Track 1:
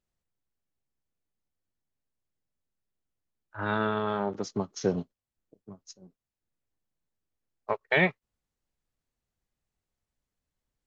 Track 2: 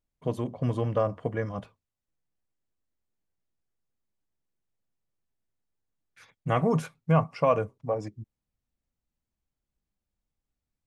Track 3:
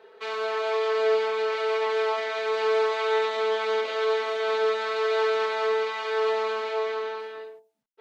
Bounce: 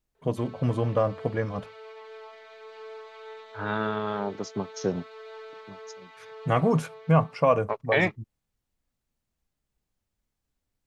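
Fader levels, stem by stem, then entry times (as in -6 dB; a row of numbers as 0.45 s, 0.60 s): -0.5 dB, +2.0 dB, -19.5 dB; 0.00 s, 0.00 s, 0.15 s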